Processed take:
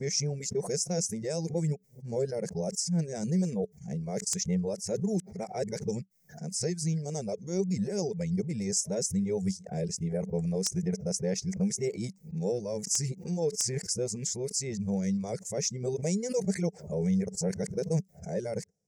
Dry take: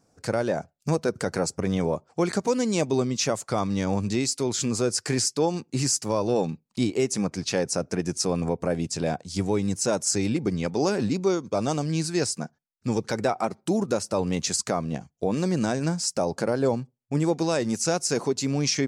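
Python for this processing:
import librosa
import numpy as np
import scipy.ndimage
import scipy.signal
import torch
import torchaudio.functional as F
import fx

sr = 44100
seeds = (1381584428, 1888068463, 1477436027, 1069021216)

y = x[::-1].copy()
y = fx.high_shelf_res(y, sr, hz=3800.0, db=12.0, q=3.0)
y = fx.dereverb_blind(y, sr, rt60_s=0.61)
y = fx.curve_eq(y, sr, hz=(110.0, 190.0, 270.0, 430.0, 790.0, 1200.0, 2100.0, 4300.0, 6600.0), db=(0, 11, -14, 6, -5, -18, 6, -20, -11))
y = (np.mod(10.0 ** (8.0 / 20.0) * y + 1.0, 2.0) - 1.0) / 10.0 ** (8.0 / 20.0)
y = fx.pre_swell(y, sr, db_per_s=120.0)
y = y * 10.0 ** (-8.5 / 20.0)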